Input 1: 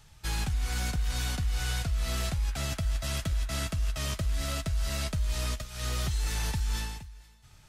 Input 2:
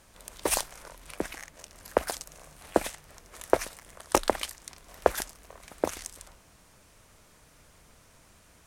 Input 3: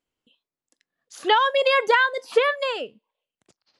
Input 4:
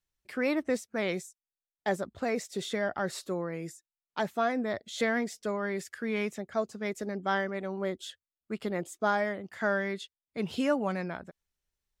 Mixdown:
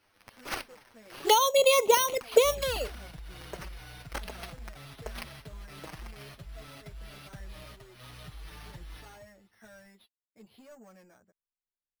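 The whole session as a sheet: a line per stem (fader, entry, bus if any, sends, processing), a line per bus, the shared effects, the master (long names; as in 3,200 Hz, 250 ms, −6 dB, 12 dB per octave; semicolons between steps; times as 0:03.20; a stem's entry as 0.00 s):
−10.5 dB, 2.20 s, no send, no processing
−17.0 dB, 0.00 s, no send, flat-topped bell 6,400 Hz +15 dB
0.0 dB, 0.00 s, no send, no processing
−17.0 dB, 0.00 s, no send, soft clipping −27.5 dBFS, distortion −11 dB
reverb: not used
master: decimation without filtering 6×; flanger swept by the level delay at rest 10.2 ms, full sweep at −18.5 dBFS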